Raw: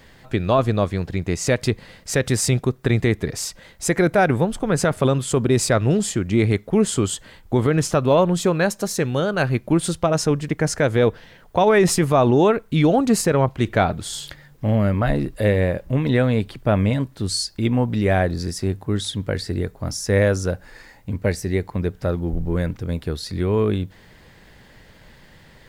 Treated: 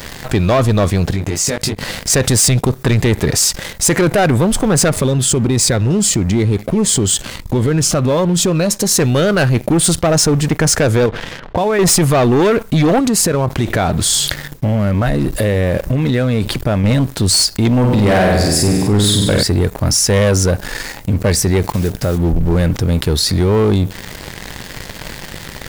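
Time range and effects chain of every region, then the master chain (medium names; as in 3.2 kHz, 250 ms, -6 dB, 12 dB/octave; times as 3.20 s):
1.12–2.10 s: compression, threshold -33 dBFS + doubling 20 ms -4.5 dB
4.90–8.92 s: treble shelf 8.6 kHz -6.5 dB + compression 2:1, threshold -24 dBFS + Shepard-style phaser falling 1.6 Hz
11.06–11.79 s: low-pass 3.4 kHz 24 dB/octave + compression, threshold -24 dBFS
12.99–16.84 s: compression 4:1, threshold -24 dBFS + gate with hold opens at -38 dBFS, closes at -42 dBFS
17.79–19.43 s: band-stop 5.8 kHz, Q 6.9 + flutter echo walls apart 8.3 m, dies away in 0.86 s
21.62–22.20 s: block-companded coder 5-bit + compression 3:1, threshold -27 dBFS
whole clip: tone controls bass +1 dB, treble +6 dB; waveshaping leveller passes 3; level flattener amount 50%; trim -3 dB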